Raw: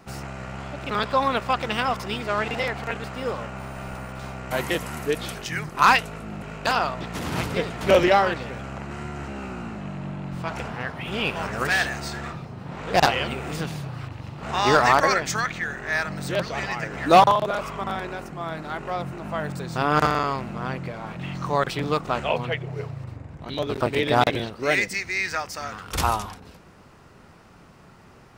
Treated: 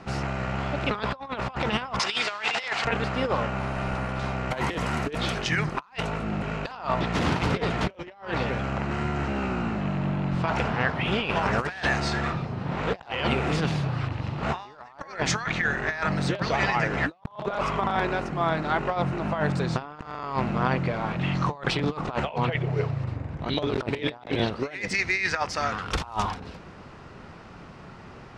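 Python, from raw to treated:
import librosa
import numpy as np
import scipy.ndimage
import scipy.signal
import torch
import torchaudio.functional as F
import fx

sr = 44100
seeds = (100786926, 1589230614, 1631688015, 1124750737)

y = fx.weighting(x, sr, curve='ITU-R 468', at=(1.99, 2.85))
y = scipy.signal.sosfilt(scipy.signal.butter(2, 4900.0, 'lowpass', fs=sr, output='sos'), y)
y = fx.dynamic_eq(y, sr, hz=900.0, q=2.6, threshold_db=-35.0, ratio=4.0, max_db=5)
y = fx.over_compress(y, sr, threshold_db=-28.0, ratio=-0.5)
y = y * librosa.db_to_amplitude(1.0)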